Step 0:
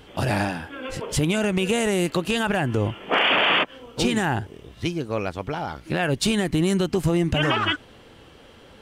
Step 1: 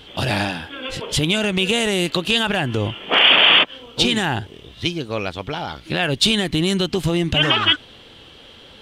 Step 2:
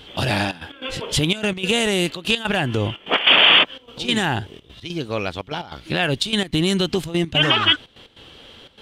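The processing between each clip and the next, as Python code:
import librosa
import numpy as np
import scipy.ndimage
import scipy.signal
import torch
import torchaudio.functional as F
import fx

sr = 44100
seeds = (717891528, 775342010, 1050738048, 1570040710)

y1 = fx.peak_eq(x, sr, hz=3500.0, db=12.0, octaves=0.89)
y1 = F.gain(torch.from_numpy(y1), 1.0).numpy()
y2 = fx.step_gate(y1, sr, bpm=147, pattern='xxxxx.x.', floor_db=-12.0, edge_ms=4.5)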